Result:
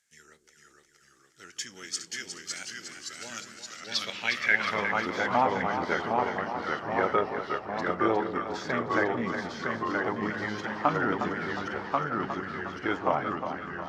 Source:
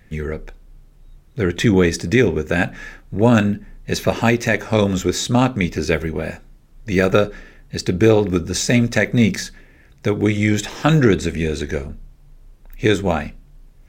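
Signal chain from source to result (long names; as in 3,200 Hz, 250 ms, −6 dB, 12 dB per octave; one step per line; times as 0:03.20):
formants moved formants −2 semitones
delay with pitch and tempo change per echo 443 ms, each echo −1 semitone, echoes 3
band-pass filter sweep 7,200 Hz → 940 Hz, 0:03.61–0:05.09
echo with a time of its own for lows and highs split 500 Hz, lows 170 ms, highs 359 ms, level −8 dB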